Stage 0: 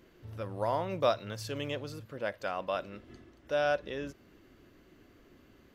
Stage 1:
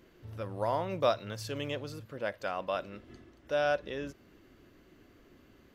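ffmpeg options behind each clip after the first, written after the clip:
ffmpeg -i in.wav -af anull out.wav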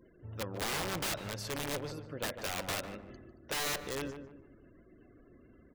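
ffmpeg -i in.wav -filter_complex "[0:a]aeval=exprs='(mod(29.9*val(0)+1,2)-1)/29.9':channel_layout=same,afftfilt=real='re*gte(hypot(re,im),0.00112)':imag='im*gte(hypot(re,im),0.00112)':win_size=1024:overlap=0.75,asplit=2[link_01][link_02];[link_02]adelay=149,lowpass=frequency=1300:poles=1,volume=-7.5dB,asplit=2[link_03][link_04];[link_04]adelay=149,lowpass=frequency=1300:poles=1,volume=0.38,asplit=2[link_05][link_06];[link_06]adelay=149,lowpass=frequency=1300:poles=1,volume=0.38,asplit=2[link_07][link_08];[link_08]adelay=149,lowpass=frequency=1300:poles=1,volume=0.38[link_09];[link_01][link_03][link_05][link_07][link_09]amix=inputs=5:normalize=0" out.wav

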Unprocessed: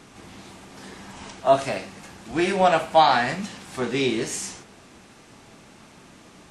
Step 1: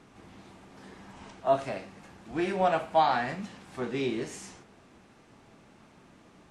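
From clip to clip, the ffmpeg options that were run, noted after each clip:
ffmpeg -i in.wav -af "highshelf=frequency=3100:gain=-9.5,volume=-6.5dB" out.wav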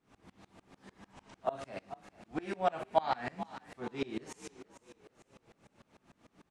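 ffmpeg -i in.wav -filter_complex "[0:a]asplit=5[link_01][link_02][link_03][link_04][link_05];[link_02]adelay=437,afreqshift=43,volume=-15dB[link_06];[link_03]adelay=874,afreqshift=86,volume=-22.5dB[link_07];[link_04]adelay=1311,afreqshift=129,volume=-30.1dB[link_08];[link_05]adelay=1748,afreqshift=172,volume=-37.6dB[link_09];[link_01][link_06][link_07][link_08][link_09]amix=inputs=5:normalize=0,aeval=exprs='val(0)*pow(10,-27*if(lt(mod(-6.7*n/s,1),2*abs(-6.7)/1000),1-mod(-6.7*n/s,1)/(2*abs(-6.7)/1000),(mod(-6.7*n/s,1)-2*abs(-6.7)/1000)/(1-2*abs(-6.7)/1000))/20)':channel_layout=same" out.wav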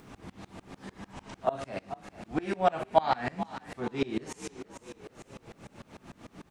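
ffmpeg -i in.wav -filter_complex "[0:a]lowshelf=frequency=230:gain=4,asplit=2[link_01][link_02];[link_02]acompressor=mode=upward:threshold=-36dB:ratio=2.5,volume=-2dB[link_03];[link_01][link_03]amix=inputs=2:normalize=0" out.wav

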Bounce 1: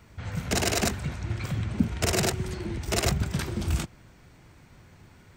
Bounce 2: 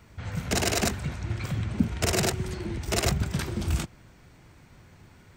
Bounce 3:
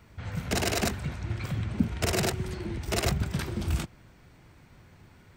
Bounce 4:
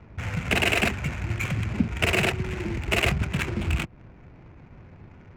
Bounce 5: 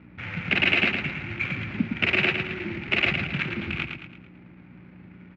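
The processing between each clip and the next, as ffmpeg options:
ffmpeg -i in.wav -af anull out.wav
ffmpeg -i in.wav -af "equalizer=frequency=6900:width_type=o:width=0.77:gain=-3.5,volume=-1.5dB" out.wav
ffmpeg -i in.wav -filter_complex "[0:a]asplit=2[link_01][link_02];[link_02]acompressor=threshold=-38dB:ratio=6,volume=3dB[link_03];[link_01][link_03]amix=inputs=2:normalize=0,lowpass=frequency=2600:width_type=q:width=3.7,adynamicsmooth=sensitivity=7.5:basefreq=560" out.wav
ffmpeg -i in.wav -filter_complex "[0:a]aeval=exprs='val(0)+0.00891*(sin(2*PI*60*n/s)+sin(2*PI*2*60*n/s)/2+sin(2*PI*3*60*n/s)/3+sin(2*PI*4*60*n/s)/4+sin(2*PI*5*60*n/s)/5)':channel_layout=same,highpass=170,equalizer=frequency=460:width_type=q:width=4:gain=-8,equalizer=frequency=680:width_type=q:width=4:gain=-8,equalizer=frequency=1000:width_type=q:width=4:gain=-7,equalizer=frequency=2300:width_type=q:width=4:gain=4,lowpass=frequency=3900:width=0.5412,lowpass=frequency=3900:width=1.3066,asplit=2[link_01][link_02];[link_02]aecho=0:1:111|222|333|444|555:0.501|0.216|0.0927|0.0398|0.0171[link_03];[link_01][link_03]amix=inputs=2:normalize=0" out.wav

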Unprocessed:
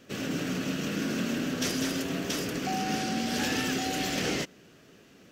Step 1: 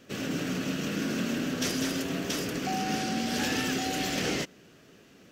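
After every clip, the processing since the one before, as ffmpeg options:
ffmpeg -i in.wav -af anull out.wav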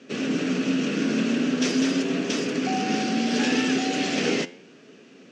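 ffmpeg -i in.wav -af "flanger=delay=7.3:depth=7.1:regen=87:speed=0.38:shape=triangular,highpass=frequency=150:width=0.5412,highpass=frequency=150:width=1.3066,equalizer=frequency=250:width_type=q:width=4:gain=7,equalizer=frequency=430:width_type=q:width=4:gain=6,equalizer=frequency=2500:width_type=q:width=4:gain=4,lowpass=frequency=7100:width=0.5412,lowpass=frequency=7100:width=1.3066,volume=7.5dB" out.wav

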